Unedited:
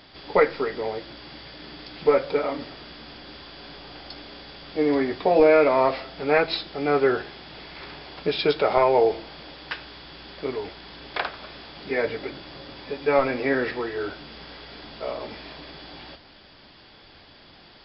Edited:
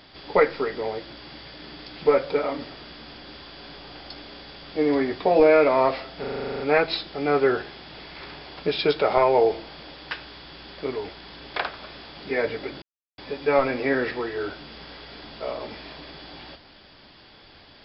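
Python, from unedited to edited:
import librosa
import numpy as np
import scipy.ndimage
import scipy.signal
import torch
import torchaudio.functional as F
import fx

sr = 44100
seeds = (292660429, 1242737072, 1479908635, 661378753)

y = fx.edit(x, sr, fx.stutter(start_s=6.2, slice_s=0.04, count=11),
    fx.silence(start_s=12.42, length_s=0.36), tone=tone)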